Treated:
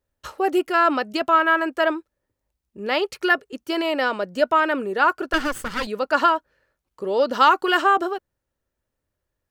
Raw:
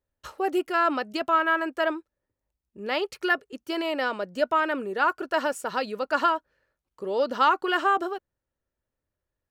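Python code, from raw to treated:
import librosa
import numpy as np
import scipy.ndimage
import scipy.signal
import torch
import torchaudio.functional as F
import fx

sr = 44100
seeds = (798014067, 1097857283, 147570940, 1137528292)

y = fx.lower_of_two(x, sr, delay_ms=0.63, at=(5.33, 5.87))
y = fx.high_shelf(y, sr, hz=4600.0, db=6.0, at=(7.33, 7.82))
y = y * librosa.db_to_amplitude(5.0)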